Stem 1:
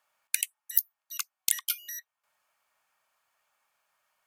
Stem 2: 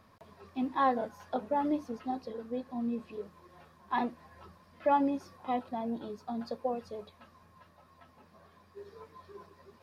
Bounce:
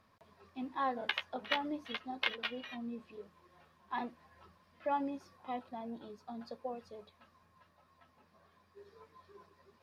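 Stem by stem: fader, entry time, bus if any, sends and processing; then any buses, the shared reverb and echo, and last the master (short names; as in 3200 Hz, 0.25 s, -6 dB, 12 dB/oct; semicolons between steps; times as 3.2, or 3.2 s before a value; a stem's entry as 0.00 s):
+1.0 dB, 0.75 s, no send, spectral whitening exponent 0.1; elliptic band-pass 420–3300 Hz, stop band 40 dB; flange 0.66 Hz, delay 8.9 ms, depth 8.7 ms, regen -28%
-9.0 dB, 0.00 s, no send, dry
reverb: off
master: bell 2700 Hz +4 dB 2.9 oct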